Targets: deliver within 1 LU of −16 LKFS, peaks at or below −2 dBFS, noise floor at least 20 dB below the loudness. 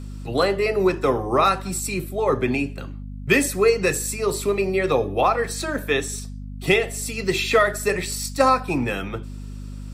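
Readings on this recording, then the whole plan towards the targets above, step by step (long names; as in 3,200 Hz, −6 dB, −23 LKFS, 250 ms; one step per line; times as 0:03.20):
mains hum 50 Hz; hum harmonics up to 250 Hz; level of the hum −31 dBFS; integrated loudness −21.5 LKFS; sample peak −6.0 dBFS; target loudness −16.0 LKFS
→ hum removal 50 Hz, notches 5
level +5.5 dB
brickwall limiter −2 dBFS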